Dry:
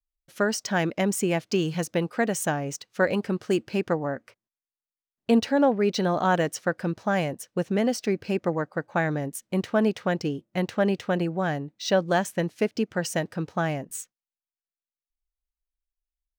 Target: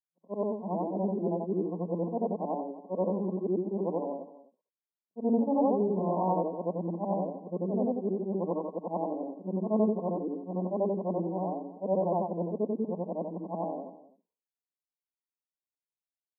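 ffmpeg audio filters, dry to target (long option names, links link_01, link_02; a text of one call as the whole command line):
ffmpeg -i in.wav -filter_complex "[0:a]afftfilt=real='re':imag='-im':win_size=8192:overlap=0.75,afftfilt=real='re*between(b*sr/4096,170,1100)':imag='im*between(b*sr/4096,170,1100)':win_size=4096:overlap=0.75,asplit=2[link_01][link_02];[link_02]aecho=0:1:254:0.133[link_03];[link_01][link_03]amix=inputs=2:normalize=0" out.wav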